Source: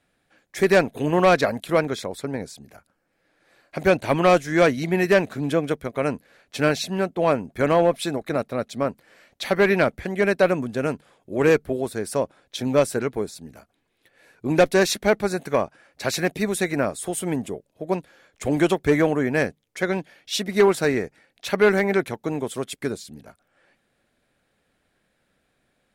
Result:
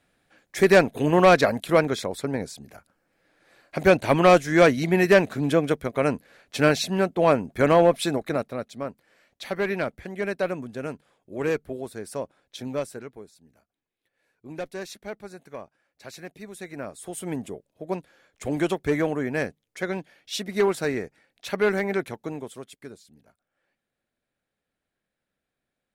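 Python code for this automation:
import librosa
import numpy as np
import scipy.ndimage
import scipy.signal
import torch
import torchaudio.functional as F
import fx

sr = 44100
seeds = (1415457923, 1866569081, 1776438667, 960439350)

y = fx.gain(x, sr, db=fx.line((8.18, 1.0), (8.76, -8.0), (12.63, -8.0), (13.24, -17.0), (16.48, -17.0), (17.33, -5.0), (22.22, -5.0), (22.79, -14.5)))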